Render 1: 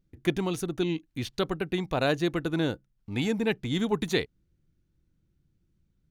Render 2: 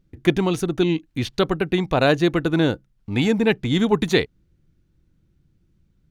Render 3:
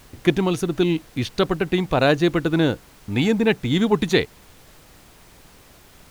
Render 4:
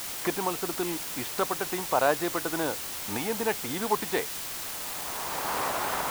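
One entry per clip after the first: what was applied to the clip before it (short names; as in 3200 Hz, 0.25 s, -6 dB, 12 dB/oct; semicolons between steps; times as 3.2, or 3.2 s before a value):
high shelf 7000 Hz -7.5 dB; gain +8.5 dB
added noise pink -49 dBFS
recorder AGC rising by 21 dB/s; band-pass 940 Hz, Q 1.7; requantised 6-bit, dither triangular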